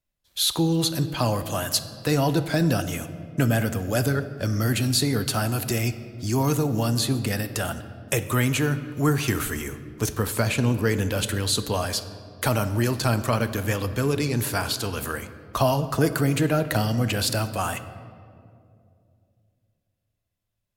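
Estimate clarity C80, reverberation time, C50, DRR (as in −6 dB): 13.5 dB, 2.5 s, 12.5 dB, 11.0 dB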